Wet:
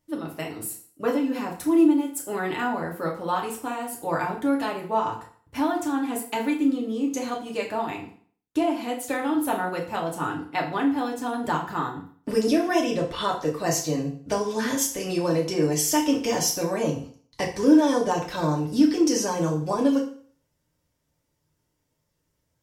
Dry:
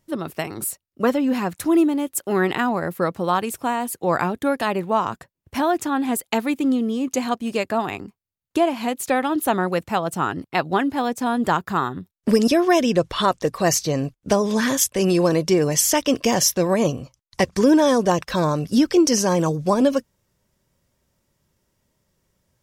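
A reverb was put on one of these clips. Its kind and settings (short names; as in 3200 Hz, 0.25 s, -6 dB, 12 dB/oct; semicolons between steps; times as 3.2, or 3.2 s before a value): FDN reverb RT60 0.49 s, low-frequency decay 0.95×, high-frequency decay 0.9×, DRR -2 dB; gain -9.5 dB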